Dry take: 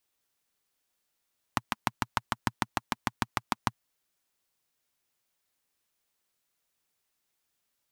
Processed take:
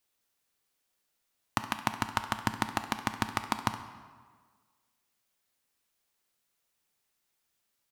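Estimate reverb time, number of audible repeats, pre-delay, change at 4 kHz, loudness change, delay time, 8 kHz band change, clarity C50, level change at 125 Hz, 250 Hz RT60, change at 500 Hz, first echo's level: 1.6 s, 1, 6 ms, +0.5 dB, +0.5 dB, 68 ms, +0.5 dB, 9.5 dB, +0.5 dB, 1.6 s, +1.0 dB, -15.0 dB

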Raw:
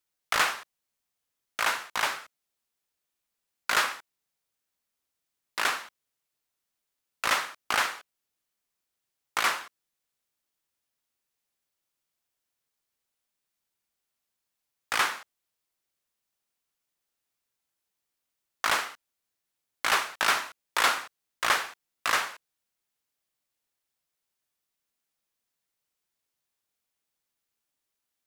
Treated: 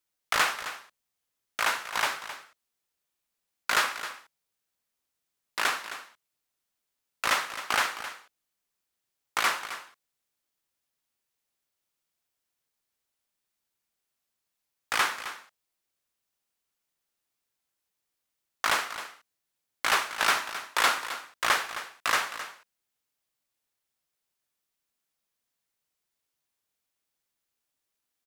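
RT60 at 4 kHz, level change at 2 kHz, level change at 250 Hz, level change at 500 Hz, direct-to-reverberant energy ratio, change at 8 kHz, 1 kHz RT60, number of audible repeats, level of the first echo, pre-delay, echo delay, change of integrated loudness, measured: no reverb, 0.0 dB, 0.0 dB, 0.0 dB, no reverb, 0.0 dB, no reverb, 1, -12.5 dB, no reverb, 264 ms, -0.5 dB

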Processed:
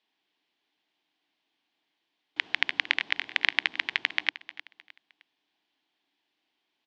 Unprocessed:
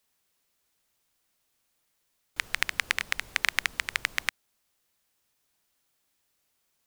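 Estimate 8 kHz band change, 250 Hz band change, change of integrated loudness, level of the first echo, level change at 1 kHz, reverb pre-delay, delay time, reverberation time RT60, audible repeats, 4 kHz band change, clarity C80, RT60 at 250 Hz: under -15 dB, +3.5 dB, +1.5 dB, -15.5 dB, -1.5 dB, no reverb, 308 ms, no reverb, 3, +3.0 dB, no reverb, no reverb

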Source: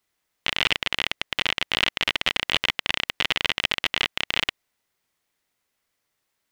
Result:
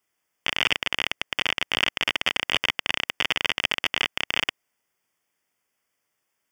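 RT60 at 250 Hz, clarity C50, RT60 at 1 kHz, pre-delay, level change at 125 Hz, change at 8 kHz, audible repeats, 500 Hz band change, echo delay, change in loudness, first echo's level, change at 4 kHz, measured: no reverb, no reverb, no reverb, no reverb, -3.5 dB, 0.0 dB, no echo, -0.5 dB, no echo, -0.5 dB, no echo, -1.0 dB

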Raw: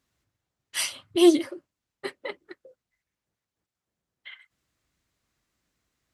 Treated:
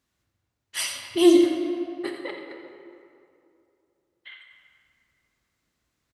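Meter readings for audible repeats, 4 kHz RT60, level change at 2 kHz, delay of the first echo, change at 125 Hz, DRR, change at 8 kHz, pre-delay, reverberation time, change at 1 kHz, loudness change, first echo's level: 1, 1.5 s, +1.0 dB, 86 ms, no reading, 2.0 dB, 0.0 dB, 18 ms, 2.6 s, +1.0 dB, +0.5 dB, -11.0 dB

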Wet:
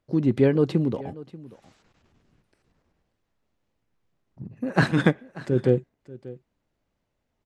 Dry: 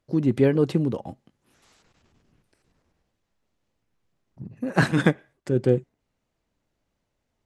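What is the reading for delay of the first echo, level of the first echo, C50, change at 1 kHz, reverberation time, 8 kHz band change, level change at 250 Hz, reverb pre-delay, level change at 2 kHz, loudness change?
587 ms, -19.0 dB, no reverb, 0.0 dB, no reverb, -5.0 dB, 0.0 dB, no reverb, -0.5 dB, 0.0 dB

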